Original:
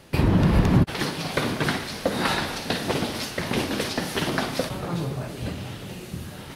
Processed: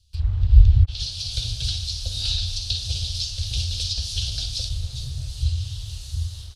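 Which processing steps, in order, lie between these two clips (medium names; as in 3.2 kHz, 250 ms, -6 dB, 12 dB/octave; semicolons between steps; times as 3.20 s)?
inverse Chebyshev band-stop 160–2100 Hz, stop band 40 dB; low-pass that closes with the level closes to 2.4 kHz, closed at -24.5 dBFS; treble shelf 8.2 kHz +6.5 dB; level rider gain up to 15 dB; in parallel at -10.5 dB: word length cut 6-bit, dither none; on the sum: tape spacing loss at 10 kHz 20 dB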